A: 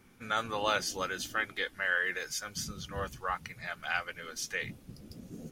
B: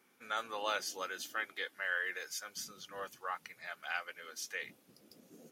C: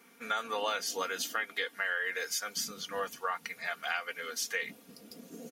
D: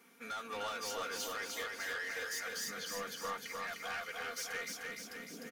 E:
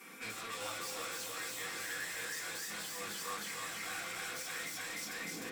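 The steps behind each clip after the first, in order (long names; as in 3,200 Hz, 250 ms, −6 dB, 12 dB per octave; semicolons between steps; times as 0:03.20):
high-pass filter 360 Hz 12 dB per octave; parametric band 13,000 Hz +5 dB 0.33 octaves; level −5.5 dB
comb filter 4.3 ms, depth 61%; downward compressor 5 to 1, threshold −38 dBFS, peak gain reduction 8.5 dB; level +8.5 dB
soft clipping −33.5 dBFS, distortion −9 dB; on a send: repeating echo 303 ms, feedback 59%, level −3 dB; on the sum: level −3.5 dB
in parallel at −8 dB: sine wavefolder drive 18 dB, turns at −30 dBFS; on the sum: convolution reverb RT60 0.35 s, pre-delay 3 ms, DRR −3 dB; level −6 dB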